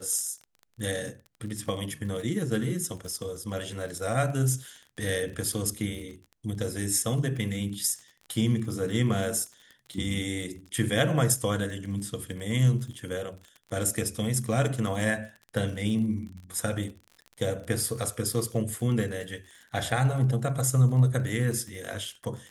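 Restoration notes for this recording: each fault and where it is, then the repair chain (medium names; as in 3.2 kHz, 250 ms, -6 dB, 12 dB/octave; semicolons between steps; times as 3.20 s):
crackle 34 per s -37 dBFS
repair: de-click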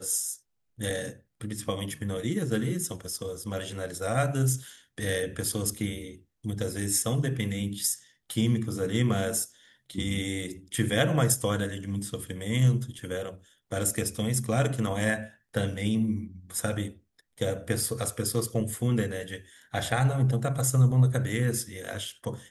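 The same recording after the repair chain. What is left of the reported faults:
nothing left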